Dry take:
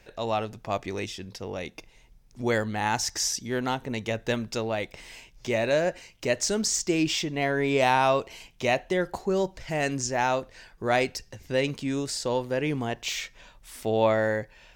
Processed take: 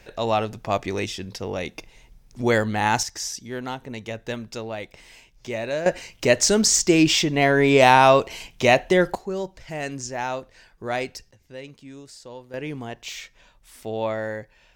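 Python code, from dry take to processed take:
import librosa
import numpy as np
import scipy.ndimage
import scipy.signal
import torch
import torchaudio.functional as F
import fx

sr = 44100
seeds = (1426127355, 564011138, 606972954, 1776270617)

y = fx.gain(x, sr, db=fx.steps((0.0, 5.5), (3.03, -3.0), (5.86, 8.0), (9.15, -3.0), (11.31, -13.0), (12.54, -4.0)))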